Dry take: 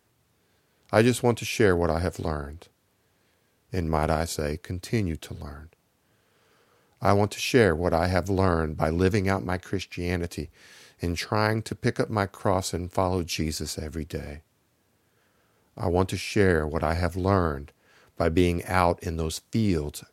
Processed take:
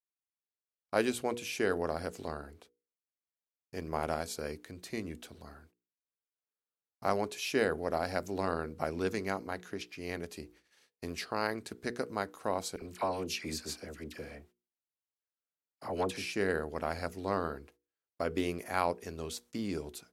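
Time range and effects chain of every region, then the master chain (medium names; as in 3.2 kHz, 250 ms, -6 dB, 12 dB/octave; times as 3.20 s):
12.76–16.32 s: peaking EQ 2.1 kHz +3.5 dB 2.2 oct + phase dispersion lows, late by 57 ms, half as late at 1.2 kHz
whole clip: gate -48 dBFS, range -33 dB; peaking EQ 110 Hz -13.5 dB 1 oct; hum notches 60/120/180/240/300/360/420/480 Hz; trim -8 dB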